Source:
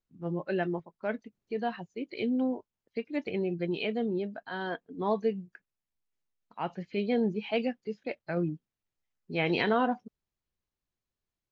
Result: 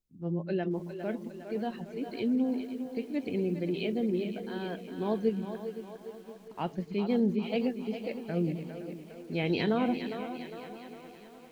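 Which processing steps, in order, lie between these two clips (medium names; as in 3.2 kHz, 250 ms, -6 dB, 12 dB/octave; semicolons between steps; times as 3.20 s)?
peaking EQ 140 Hz -3 dB 0.31 oct; 5.27–6.90 s: transient shaper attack +7 dB, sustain +2 dB; peaking EQ 1.3 kHz -12 dB 2.7 oct; on a send: two-band feedback delay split 310 Hz, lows 129 ms, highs 406 ms, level -9 dB; on the sum: bit-crushed delay 514 ms, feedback 55%, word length 9-bit, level -13.5 dB; trim +3.5 dB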